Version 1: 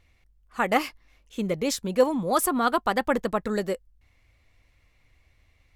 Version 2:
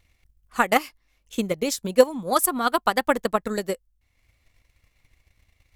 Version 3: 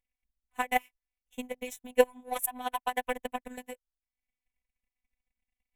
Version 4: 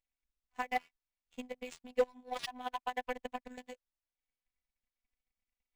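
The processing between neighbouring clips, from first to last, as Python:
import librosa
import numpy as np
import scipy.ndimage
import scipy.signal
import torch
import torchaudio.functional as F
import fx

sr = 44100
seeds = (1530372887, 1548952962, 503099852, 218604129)

y1 = fx.transient(x, sr, attack_db=9, sustain_db=-5)
y1 = fx.high_shelf(y1, sr, hz=5100.0, db=9.5)
y1 = F.gain(torch.from_numpy(y1), -3.0).numpy()
y2 = fx.power_curve(y1, sr, exponent=1.4)
y2 = fx.fixed_phaser(y2, sr, hz=1300.0, stages=6)
y2 = fx.robotise(y2, sr, hz=250.0)
y3 = np.clip(y2, -10.0 ** (-15.0 / 20.0), 10.0 ** (-15.0 / 20.0))
y3 = np.interp(np.arange(len(y3)), np.arange(len(y3))[::3], y3[::3])
y3 = F.gain(torch.from_numpy(y3), -5.5).numpy()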